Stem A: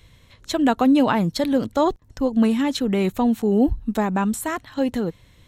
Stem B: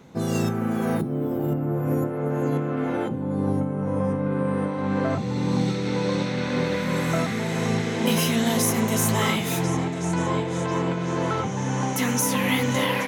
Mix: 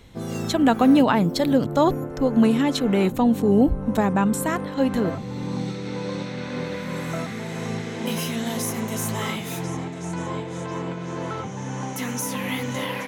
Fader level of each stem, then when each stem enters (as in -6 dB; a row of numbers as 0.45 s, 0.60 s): +0.5 dB, -5.0 dB; 0.00 s, 0.00 s